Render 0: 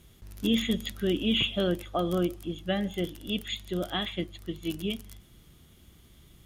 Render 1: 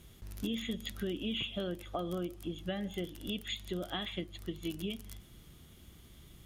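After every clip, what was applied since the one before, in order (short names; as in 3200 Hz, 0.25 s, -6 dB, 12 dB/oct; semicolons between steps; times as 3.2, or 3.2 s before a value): compressor 4:1, threshold -35 dBFS, peak gain reduction 12 dB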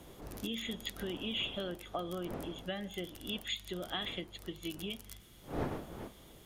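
wind noise 380 Hz -44 dBFS; low shelf 440 Hz -7.5 dB; gain +1.5 dB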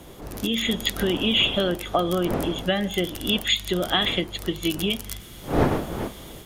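AGC gain up to 7 dB; gain +9 dB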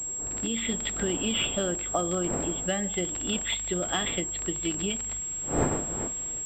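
pulse-width modulation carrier 7600 Hz; gain -6 dB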